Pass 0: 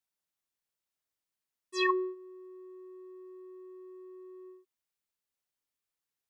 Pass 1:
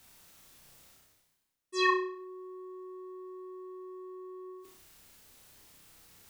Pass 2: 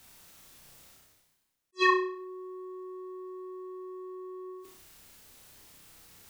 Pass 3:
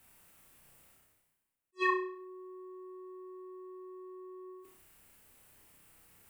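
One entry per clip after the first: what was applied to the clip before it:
bass shelf 230 Hz +9.5 dB; reverse; upward compressor, threshold -37 dBFS; reverse; flutter echo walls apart 5.4 m, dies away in 0.47 s
attacks held to a fixed rise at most 530 dB/s; trim +3 dB
high-order bell 4.8 kHz -8 dB 1.2 oct; trim -6 dB

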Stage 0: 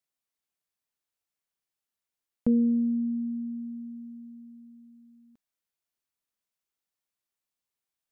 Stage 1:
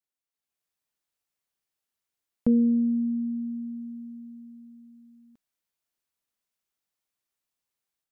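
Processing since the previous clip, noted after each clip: level rider gain up to 8 dB; trim -6 dB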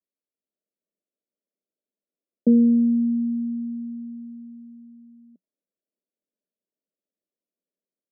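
Chebyshev band-pass 180–620 Hz, order 4; trim +5.5 dB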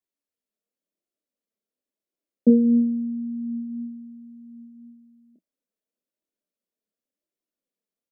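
flange 0.95 Hz, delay 2.7 ms, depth 2 ms, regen +63%; doubling 28 ms -7 dB; trim +4 dB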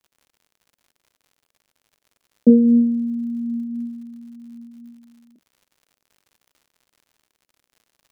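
crackle 110 per s -50 dBFS; trim +4 dB

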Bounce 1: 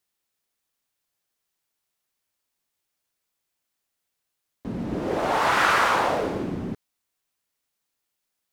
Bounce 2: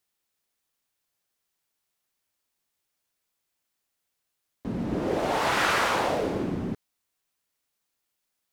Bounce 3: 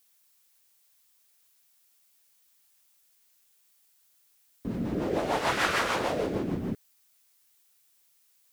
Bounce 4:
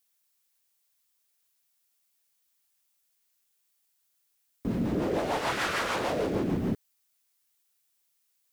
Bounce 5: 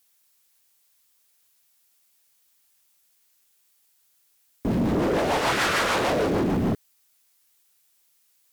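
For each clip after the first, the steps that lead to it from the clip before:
dynamic bell 1.2 kHz, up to -6 dB, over -33 dBFS, Q 0.96
rotary cabinet horn 6.7 Hz; added noise blue -66 dBFS
waveshaping leveller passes 2; gain riding 0.5 s; trim -6 dB
sine folder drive 5 dB, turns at -19.5 dBFS

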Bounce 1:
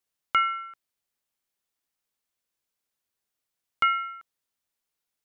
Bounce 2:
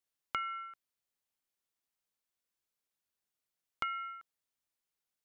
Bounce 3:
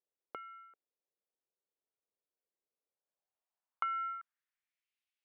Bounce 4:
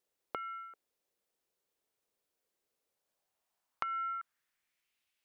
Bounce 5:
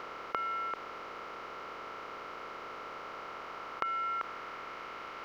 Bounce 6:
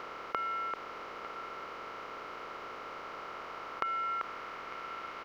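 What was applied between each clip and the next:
compression 6:1, threshold -28 dBFS, peak gain reduction 9.5 dB; trim -5.5 dB
band-pass sweep 460 Hz -> 2.6 kHz, 2.79–4.95 s; trim +5 dB
compression, threshold -44 dBFS, peak gain reduction 12.5 dB; trim +9 dB
spectral levelling over time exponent 0.2; trim +1 dB
delay 901 ms -13 dB

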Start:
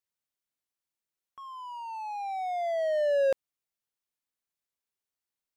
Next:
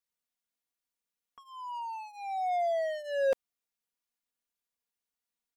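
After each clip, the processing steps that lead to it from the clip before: comb 4.2 ms, depth 82%; trim -3 dB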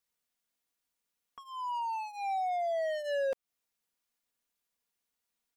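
compression 6:1, threshold -35 dBFS, peak gain reduction 11 dB; trim +4.5 dB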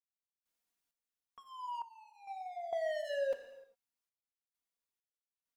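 gated-style reverb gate 430 ms falling, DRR 6.5 dB; random-step tremolo 2.2 Hz, depth 95%; flange 1.3 Hz, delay 0.8 ms, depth 2.1 ms, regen -74%; trim +1 dB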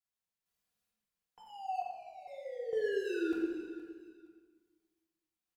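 feedback delay 468 ms, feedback 25%, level -16 dB; simulated room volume 1100 m³, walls mixed, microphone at 2.8 m; frequency shift -220 Hz; trim -3 dB

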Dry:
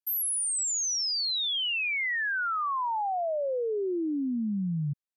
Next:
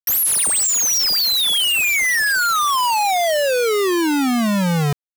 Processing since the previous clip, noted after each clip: bit crusher 5-bit; vibrato 5.3 Hz 25 cents; trim +9 dB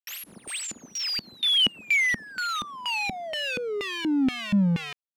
LFO band-pass square 2.1 Hz 220–2700 Hz

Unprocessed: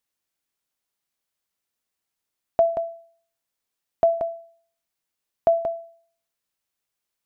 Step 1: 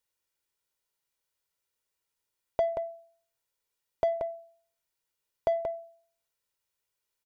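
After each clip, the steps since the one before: comb 2.1 ms, depth 49%; in parallel at -3 dB: saturation -26.5 dBFS, distortion -6 dB; on the sum: trim -7 dB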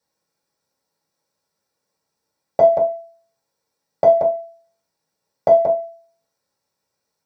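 reverberation, pre-delay 3 ms, DRR -5 dB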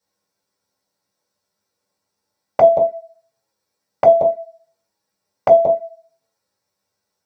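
touch-sensitive flanger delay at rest 10.2 ms, full sweep at -12.5 dBFS; trim +4 dB

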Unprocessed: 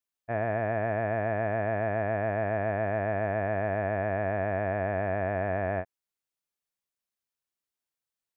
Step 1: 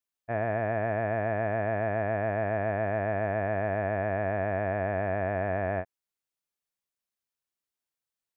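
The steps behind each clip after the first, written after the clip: no audible change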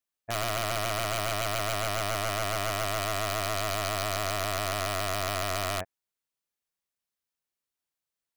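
integer overflow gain 23 dB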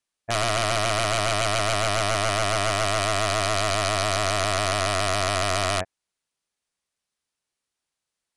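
elliptic low-pass 10 kHz, stop band 80 dB; trim +7.5 dB

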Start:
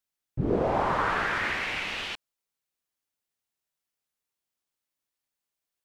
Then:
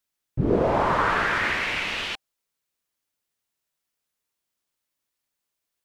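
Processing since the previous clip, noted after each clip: band-stop 780 Hz, Q 19; trim +4.5 dB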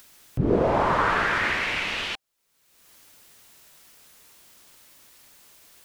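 upward compressor, threshold -30 dBFS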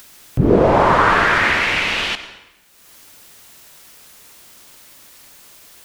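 plate-style reverb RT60 1 s, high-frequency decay 0.85×, pre-delay 80 ms, DRR 12 dB; trim +8.5 dB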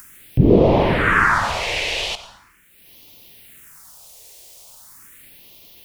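phase shifter stages 4, 0.4 Hz, lowest notch 220–1500 Hz; trim +1 dB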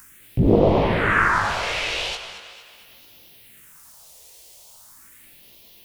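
thinning echo 227 ms, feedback 52%, high-pass 230 Hz, level -12 dB; chorus 2.3 Hz, delay 17.5 ms, depth 2.2 ms; loudspeaker Doppler distortion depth 0.44 ms

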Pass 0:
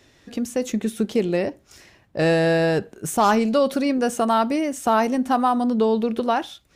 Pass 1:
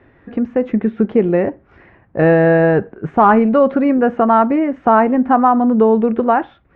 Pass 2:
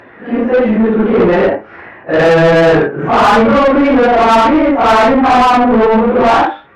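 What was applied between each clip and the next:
low-pass 1.9 kHz 24 dB/octave; band-stop 600 Hz, Q 17; trim +7.5 dB
phase randomisation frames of 200 ms; flange 0.39 Hz, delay 5.8 ms, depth 4.8 ms, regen +82%; overdrive pedal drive 28 dB, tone 2.3 kHz, clips at -2 dBFS; trim +1 dB

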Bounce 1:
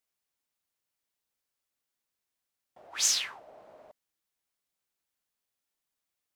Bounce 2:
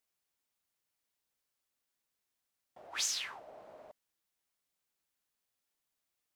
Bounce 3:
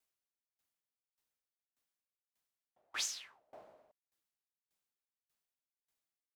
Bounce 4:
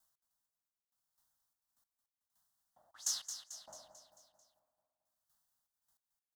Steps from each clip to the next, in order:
compression 5:1, threshold -32 dBFS, peak gain reduction 10 dB
sawtooth tremolo in dB decaying 1.7 Hz, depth 29 dB; trim +1 dB
static phaser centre 1 kHz, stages 4; trance gate "x.x...xxx" 98 bpm -24 dB; on a send: feedback delay 221 ms, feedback 53%, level -9 dB; on the sum: trim +9.5 dB

